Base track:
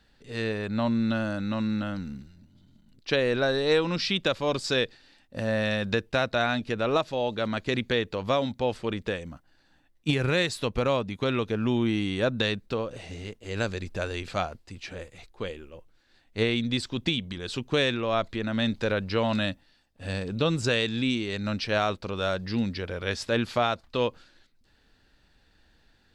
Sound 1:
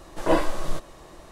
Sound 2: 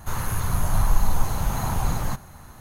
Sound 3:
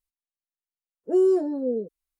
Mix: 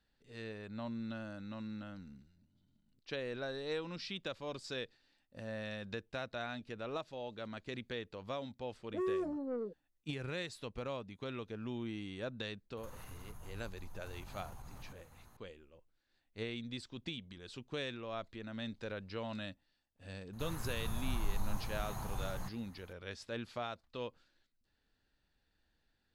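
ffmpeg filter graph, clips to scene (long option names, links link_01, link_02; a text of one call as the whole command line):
ffmpeg -i bed.wav -i cue0.wav -i cue1.wav -i cue2.wav -filter_complex "[2:a]asplit=2[link_01][link_02];[0:a]volume=-16dB[link_03];[3:a]asoftclip=type=tanh:threshold=-22.5dB[link_04];[link_01]acompressor=threshold=-30dB:ratio=6:attack=3.2:release=140:knee=1:detection=peak[link_05];[link_04]atrim=end=2.19,asetpts=PTS-STARTPTS,volume=-10dB,afade=type=in:duration=0.004:curve=hsin,afade=type=out:start_time=2.186:duration=0.004:curve=hsin,adelay=7850[link_06];[link_05]atrim=end=2.6,asetpts=PTS-STARTPTS,volume=-16.5dB,afade=type=in:duration=0.004:curve=hsin,afade=type=out:start_time=2.596:duration=0.004:curve=hsin,adelay=12770[link_07];[link_02]atrim=end=2.6,asetpts=PTS-STARTPTS,volume=-16.5dB,afade=type=in:duration=0.004:curve=hsin,afade=type=out:start_time=2.596:duration=0.004:curve=hsin,adelay=20330[link_08];[link_03][link_06][link_07][link_08]amix=inputs=4:normalize=0" out.wav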